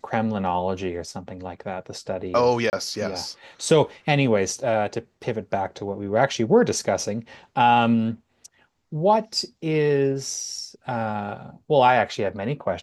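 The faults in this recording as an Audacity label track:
2.700000	2.730000	gap 29 ms

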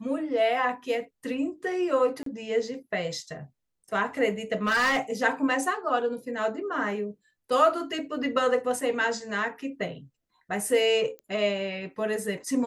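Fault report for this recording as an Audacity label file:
2.230000	2.260000	gap 33 ms
4.650000	4.990000	clipped -20 dBFS
11.190000	11.190000	pop -29 dBFS

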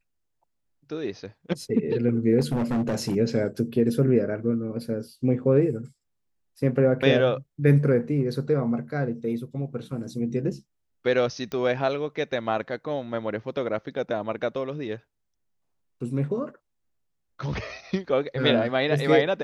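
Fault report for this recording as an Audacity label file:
2.400000	3.160000	clipped -21 dBFS
11.520000	11.520000	pop -19 dBFS

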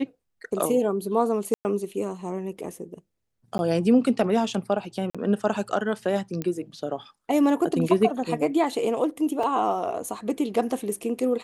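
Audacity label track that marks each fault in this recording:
1.540000	1.650000	gap 0.109 s
3.580000	3.590000	gap 11 ms
5.100000	5.150000	gap 46 ms
6.420000	6.420000	pop -16 dBFS
9.430000	9.430000	gap 3.7 ms

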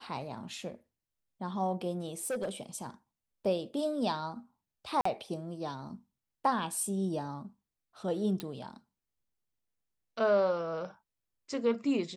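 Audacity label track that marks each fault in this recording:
2.050000	2.490000	clipped -30 dBFS
5.010000	5.050000	gap 44 ms
8.400000	8.400000	pop -21 dBFS

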